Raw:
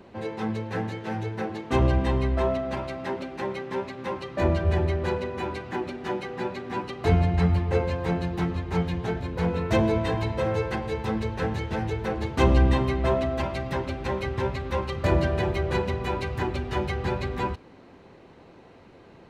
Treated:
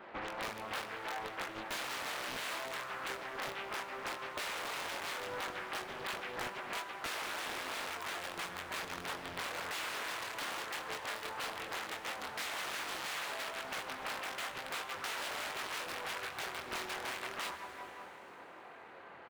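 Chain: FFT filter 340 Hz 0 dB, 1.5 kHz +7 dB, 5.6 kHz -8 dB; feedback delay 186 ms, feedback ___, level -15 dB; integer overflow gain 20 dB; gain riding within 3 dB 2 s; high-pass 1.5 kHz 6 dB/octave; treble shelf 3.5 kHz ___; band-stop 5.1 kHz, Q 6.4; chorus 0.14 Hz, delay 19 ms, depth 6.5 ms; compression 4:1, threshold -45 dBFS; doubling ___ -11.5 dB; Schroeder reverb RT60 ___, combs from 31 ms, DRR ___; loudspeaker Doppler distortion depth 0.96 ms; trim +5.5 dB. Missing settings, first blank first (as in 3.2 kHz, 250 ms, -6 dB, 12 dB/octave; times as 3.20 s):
48%, -8 dB, 22 ms, 3.7 s, 10 dB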